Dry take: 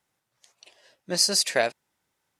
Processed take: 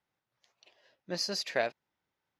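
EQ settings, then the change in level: boxcar filter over 5 samples; -6.5 dB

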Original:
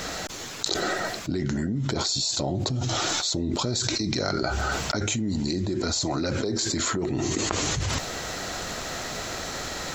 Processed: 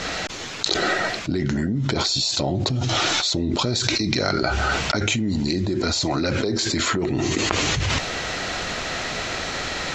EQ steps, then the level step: low-pass 6 kHz 12 dB/octave; dynamic bell 2.5 kHz, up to +6 dB, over -44 dBFS, Q 1.3; +4.0 dB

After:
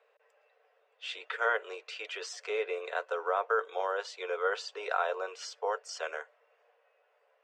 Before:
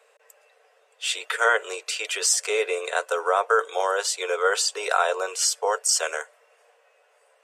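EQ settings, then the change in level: distance through air 220 m; -7.5 dB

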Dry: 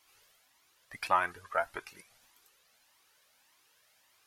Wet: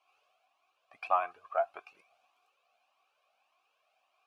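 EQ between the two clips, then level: vowel filter a; +8.0 dB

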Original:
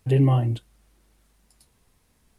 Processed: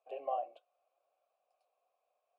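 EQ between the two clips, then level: vowel filter a; ladder high-pass 510 Hz, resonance 70%; +5.5 dB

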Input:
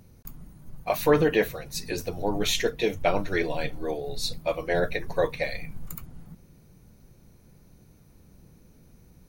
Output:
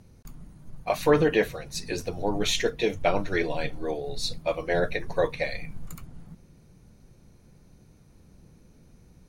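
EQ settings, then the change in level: low-pass 10 kHz 12 dB/octave; 0.0 dB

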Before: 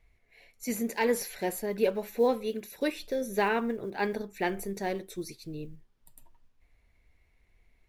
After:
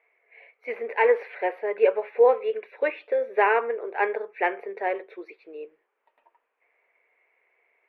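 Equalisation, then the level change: elliptic band-pass 440–2400 Hz, stop band 50 dB; +8.0 dB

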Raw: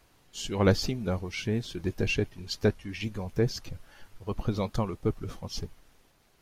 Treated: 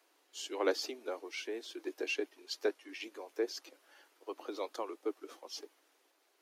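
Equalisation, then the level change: steep high-pass 290 Hz 72 dB/octave; -6.0 dB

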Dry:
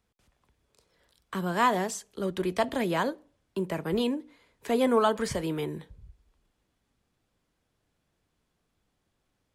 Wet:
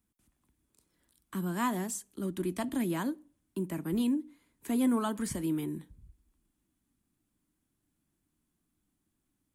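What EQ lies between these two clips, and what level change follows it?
FFT filter 120 Hz 0 dB, 310 Hz +8 dB, 460 Hz -10 dB, 1 kHz -4 dB, 5 kHz -4 dB, 9.4 kHz +9 dB; -5.0 dB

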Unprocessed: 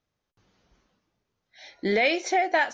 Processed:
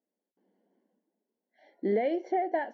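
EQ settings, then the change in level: boxcar filter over 35 samples; brick-wall FIR high-pass 190 Hz; distance through air 110 m; 0.0 dB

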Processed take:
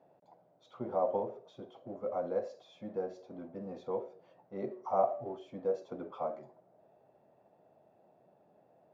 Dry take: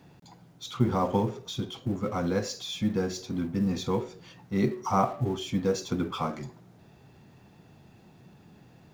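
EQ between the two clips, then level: band-pass filter 610 Hz, Q 5; +4.0 dB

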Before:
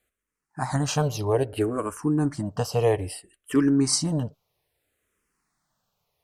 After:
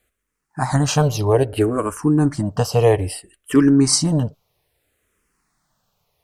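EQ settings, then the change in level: bass shelf 84 Hz +5 dB; +6.5 dB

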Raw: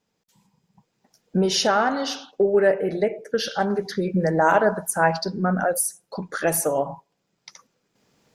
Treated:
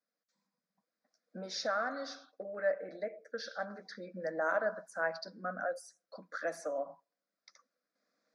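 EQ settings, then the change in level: high-pass 360 Hz 12 dB/octave; four-pole ladder low-pass 5.5 kHz, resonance 30%; static phaser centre 590 Hz, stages 8; -4.5 dB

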